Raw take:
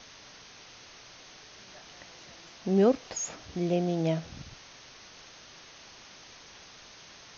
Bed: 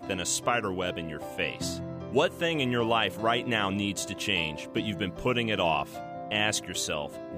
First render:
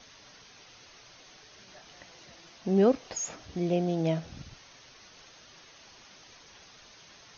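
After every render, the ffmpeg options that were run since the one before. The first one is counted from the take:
-af "afftdn=nr=6:nf=-52"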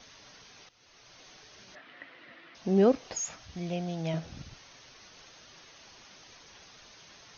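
-filter_complex "[0:a]asettb=1/sr,asplit=3[a][b][c];[a]atrim=end=1.754[d];[b]atrim=start=1.75:end=2.55,asetpts=PTS-STARTPTS,afade=t=in:d=0.004:c=qsin,afade=t=out:st=0.796:d=0.004:c=qsin,highpass=180,equalizer=f=180:t=q:w=4:g=-8,equalizer=f=270:t=q:w=4:g=8,equalizer=f=400:t=q:w=4:g=-4,equalizer=f=820:t=q:w=4:g=-6,equalizer=f=1.3k:t=q:w=4:g=4,equalizer=f=1.9k:t=q:w=4:g=8,lowpass=f=3.3k:w=0.5412,lowpass=f=3.3k:w=1.3066[e];[c]atrim=start=2.546[f];[d][e]acrossfade=d=0.004:c1=hsin:c2=qsin[g];[g][f]acrossfade=d=0.004:c1=qsin:c2=hsin,asettb=1/sr,asplit=3[h][i][j];[h]atrim=end=3.204[k];[i]atrim=start=3.2:end=4.14,asetpts=PTS-STARTPTS,afade=t=in:d=0.004:c=qsin,afade=t=out:st=0.936:d=0.004:c=qsin,equalizer=f=360:t=o:w=1.6:g=-11[l];[j]atrim=start=4.136[m];[k][l]acrossfade=d=0.004:c1=hsin:c2=qsin[n];[n][m]acrossfade=d=0.004:c1=qsin:c2=hsin,asplit=2[o][p];[o]atrim=end=0.69,asetpts=PTS-STARTPTS,afade=t=out:st=0.686:d=0.004:c=hsin:silence=0.16788[q];[p]atrim=start=0.69,asetpts=PTS-STARTPTS,afade=t=in:d=0.53:silence=0.16788[r];[q][r]concat=n=2:v=0:a=1"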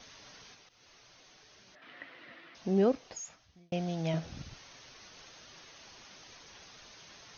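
-filter_complex "[0:a]asettb=1/sr,asplit=3[a][b][c];[a]atrim=end=0.544[d];[b]atrim=start=0.54:end=1.82,asetpts=PTS-STARTPTS,afade=t=in:d=0.004:c=qsin,afade=t=out:st=1.276:d=0.004:c=qsin,acompressor=threshold=-55dB:ratio=6:attack=3.2:release=140:knee=1:detection=peak[e];[c]atrim=start=1.816[f];[d][e]acrossfade=d=0.004:c1=hsin:c2=qsin[g];[g][f]acrossfade=d=0.004:c1=qsin:c2=hsin,asplit=2[h][i];[h]atrim=end=3.72,asetpts=PTS-STARTPTS,afade=t=out:st=2.32:d=1.4[j];[i]atrim=start=3.72,asetpts=PTS-STARTPTS,afade=t=in:d=0.004:c=hsin[k];[j][k]concat=n=2:v=0:a=1"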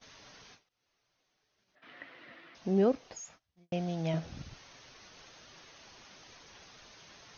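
-af "highshelf=f=3.1k:g=-3.5,agate=range=-18dB:threshold=-57dB:ratio=16:detection=peak"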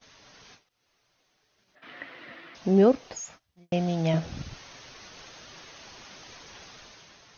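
-af "dynaudnorm=f=100:g=11:m=7.5dB"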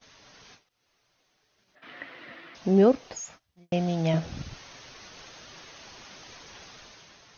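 -af anull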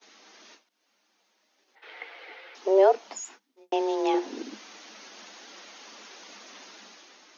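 -af "afreqshift=190"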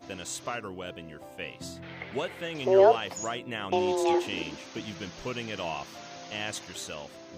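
-filter_complex "[1:a]volume=-8dB[a];[0:a][a]amix=inputs=2:normalize=0"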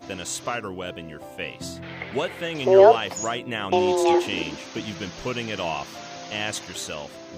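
-af "volume=6dB"

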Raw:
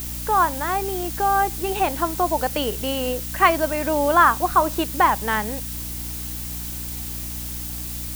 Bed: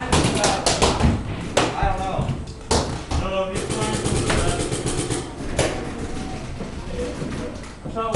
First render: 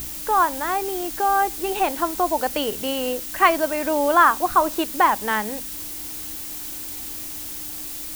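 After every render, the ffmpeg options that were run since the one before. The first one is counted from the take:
-af "bandreject=f=60:t=h:w=6,bandreject=f=120:t=h:w=6,bandreject=f=180:t=h:w=6,bandreject=f=240:t=h:w=6"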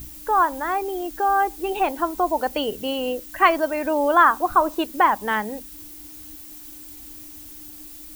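-af "afftdn=nr=11:nf=-33"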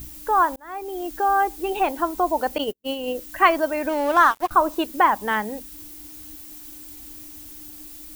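-filter_complex "[0:a]asettb=1/sr,asplit=3[a][b][c];[a]atrim=end=2.584[d];[b]atrim=start=2.58:end=3.15,asetpts=PTS-STARTPTS,afade=t=in:d=0.004:c=qsin,afade=t=out:st=0.566:d=0.004:c=qsin,agate=range=-49dB:threshold=-26dB:ratio=16:release=100:detection=peak[e];[c]atrim=start=3.146[f];[d][e]acrossfade=d=0.004:c1=hsin:c2=qsin[g];[g][f]acrossfade=d=0.004:c1=qsin:c2=hsin,asettb=1/sr,asplit=3[h][i][j];[h]atrim=end=3.894[k];[i]atrim=start=3.89:end=4.51,asetpts=PTS-STARTPTS,afade=t=in:d=0.004:c=qsin,afade=t=out:st=0.616:d=0.004:c=qsin,aeval=exprs='sgn(val(0))*max(abs(val(0))-0.0299,0)':c=same[l];[j]atrim=start=4.506[m];[k][l]acrossfade=d=0.004:c1=hsin:c2=qsin[n];[n][m]acrossfade=d=0.004:c1=qsin:c2=hsin,asplit=2[o][p];[o]atrim=end=0.56,asetpts=PTS-STARTPTS,afade=t=out:st=0.556:d=0.004:c=hsin[q];[p]atrim=start=0.56,asetpts=PTS-STARTPTS,afade=t=in:d=0.53[r];[q][r]concat=n=2:v=0:a=1"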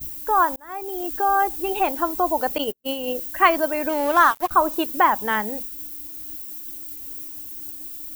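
-af "agate=range=-33dB:threshold=-36dB:ratio=3:detection=peak,highshelf=f=11k:g=11"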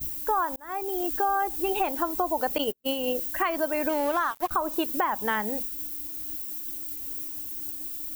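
-af "alimiter=limit=-11dB:level=0:latency=1:release=284,acompressor=threshold=-22dB:ratio=5"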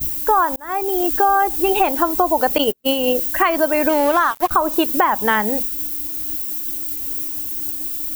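-af "volume=10dB"

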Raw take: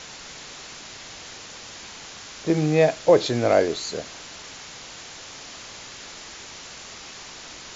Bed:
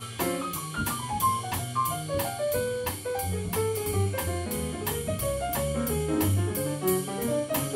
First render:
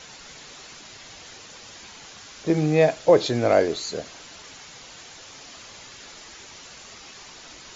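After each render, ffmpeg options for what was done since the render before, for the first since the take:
-af "afftdn=nr=6:nf=-41"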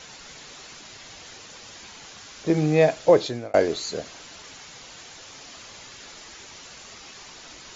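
-filter_complex "[0:a]asplit=2[a][b];[a]atrim=end=3.54,asetpts=PTS-STARTPTS,afade=t=out:st=3.11:d=0.43[c];[b]atrim=start=3.54,asetpts=PTS-STARTPTS,afade=t=in:d=0.004:c=hsin[d];[c][d]concat=n=2:v=0:a=1"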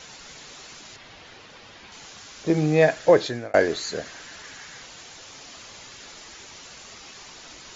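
-filter_complex "[0:a]asettb=1/sr,asplit=3[a][b][c];[a]atrim=end=0.964[d];[b]atrim=start=0.96:end=1.92,asetpts=PTS-STARTPTS,afade=t=in:d=0.004:c=qsin,afade=t=out:st=0.956:d=0.004:c=qsin,lowpass=3.6k[e];[c]atrim=start=1.916[f];[d][e]acrossfade=d=0.004:c1=hsin:c2=qsin[g];[g][f]acrossfade=d=0.004:c1=qsin:c2=hsin,asettb=1/sr,asplit=3[h][i][j];[h]atrim=end=2.824[k];[i]atrim=start=2.82:end=4.86,asetpts=PTS-STARTPTS,afade=t=in:d=0.004:c=qsin,afade=t=out:st=2.036:d=0.004:c=qsin,equalizer=f=1.7k:w=3.1:g=9[l];[j]atrim=start=4.856[m];[k][l]acrossfade=d=0.004:c1=hsin:c2=qsin[n];[n][m]acrossfade=d=0.004:c1=qsin:c2=hsin"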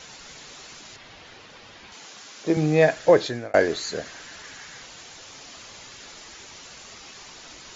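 -filter_complex "[0:a]asettb=1/sr,asplit=3[a][b][c];[a]atrim=end=1.934[d];[b]atrim=start=1.93:end=2.57,asetpts=PTS-STARTPTS,afade=t=in:d=0.004:c=qsin,afade=t=out:st=0.636:d=0.004:c=qsin,highpass=190[e];[c]atrim=start=2.566[f];[d][e]acrossfade=d=0.004:c1=hsin:c2=qsin[g];[g][f]acrossfade=d=0.004:c1=qsin:c2=hsin"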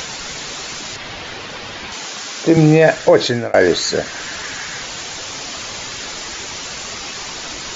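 -filter_complex "[0:a]asplit=2[a][b];[b]acompressor=mode=upward:threshold=-29dB:ratio=2.5,volume=-2dB[c];[a][c]amix=inputs=2:normalize=0,alimiter=level_in=7dB:limit=-1dB:release=50:level=0:latency=1"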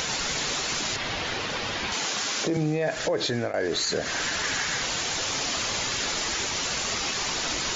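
-af "acompressor=threshold=-13dB:ratio=6,alimiter=limit=-17dB:level=0:latency=1:release=105"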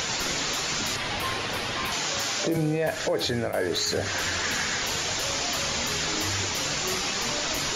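-filter_complex "[1:a]volume=-10dB[a];[0:a][a]amix=inputs=2:normalize=0"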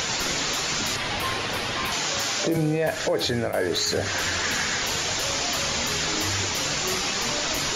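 -af "volume=2dB"

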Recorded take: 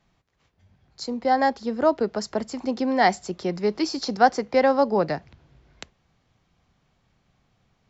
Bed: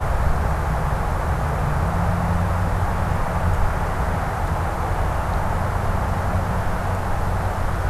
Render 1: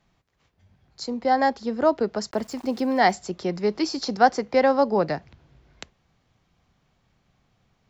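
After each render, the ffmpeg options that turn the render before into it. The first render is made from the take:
-filter_complex "[0:a]asettb=1/sr,asplit=3[a][b][c];[a]atrim=end=2.314[d];[b]atrim=start=2.31:end=3.12,asetpts=PTS-STARTPTS,afade=t=in:d=0.004:c=qsin,afade=t=out:st=0.806:d=0.004:c=qsin,aeval=exprs='val(0)*gte(abs(val(0)),0.00596)':c=same[e];[c]atrim=start=3.116[f];[d][e]acrossfade=d=0.004:c1=hsin:c2=qsin[g];[g][f]acrossfade=d=0.004:c1=qsin:c2=hsin"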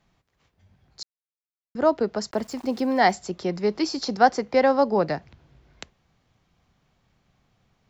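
-filter_complex "[0:a]asplit=3[a][b][c];[a]atrim=end=1.03,asetpts=PTS-STARTPTS,afade=t=out:st=1.026:d=0.004:c=hsin[d];[b]atrim=start=1.03:end=1.75,asetpts=PTS-STARTPTS,volume=0[e];[c]atrim=start=1.75,asetpts=PTS-STARTPTS,afade=t=in:d=0.004:c=hsin[f];[d][e][f]concat=n=3:v=0:a=1"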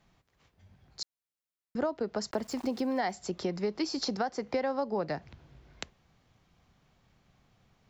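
-af "alimiter=limit=-12dB:level=0:latency=1:release=321,acompressor=threshold=-29dB:ratio=4"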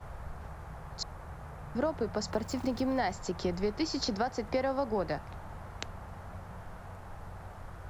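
-filter_complex "[1:a]volume=-23dB[a];[0:a][a]amix=inputs=2:normalize=0"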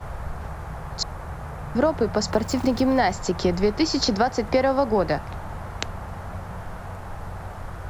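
-af "volume=10.5dB"

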